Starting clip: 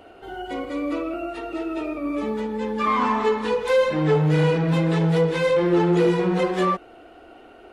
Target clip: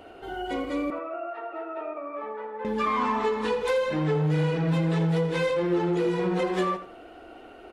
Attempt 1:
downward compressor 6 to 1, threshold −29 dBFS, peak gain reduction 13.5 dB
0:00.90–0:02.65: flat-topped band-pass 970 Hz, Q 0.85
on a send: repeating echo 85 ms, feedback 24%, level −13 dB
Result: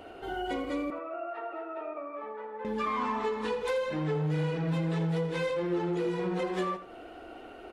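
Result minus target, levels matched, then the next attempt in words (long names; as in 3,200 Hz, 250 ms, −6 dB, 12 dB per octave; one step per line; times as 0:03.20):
downward compressor: peak gain reduction +5.5 dB
downward compressor 6 to 1, threshold −22.5 dBFS, peak gain reduction 8 dB
0:00.90–0:02.65: flat-topped band-pass 970 Hz, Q 0.85
on a send: repeating echo 85 ms, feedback 24%, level −13 dB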